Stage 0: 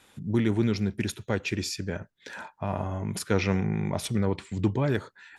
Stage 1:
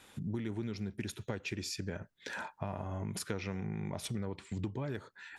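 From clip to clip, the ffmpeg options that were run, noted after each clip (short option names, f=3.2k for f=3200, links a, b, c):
-af "acompressor=threshold=-35dB:ratio=6"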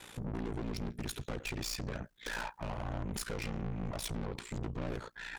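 -af "aeval=exprs='(tanh(200*val(0)+0.55)-tanh(0.55))/200':c=same,aeval=exprs='val(0)*sin(2*PI*29*n/s)':c=same,volume=12.5dB"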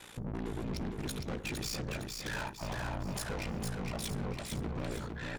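-af "aecho=1:1:459|918|1377|1836|2295:0.631|0.265|0.111|0.0467|0.0196"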